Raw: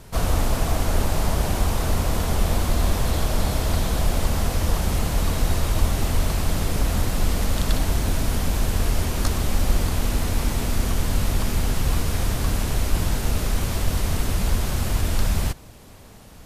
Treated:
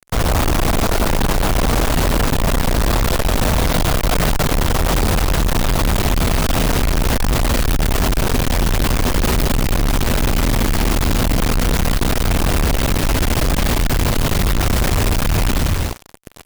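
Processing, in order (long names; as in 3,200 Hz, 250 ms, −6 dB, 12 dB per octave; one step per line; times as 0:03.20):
stylus tracing distortion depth 0.37 ms
0:03.73–0:04.44: comb filter 6.6 ms, depth 84%
on a send: bouncing-ball delay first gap 150 ms, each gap 0.75×, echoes 5
on the sum: fuzz pedal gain 34 dB, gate −36 dBFS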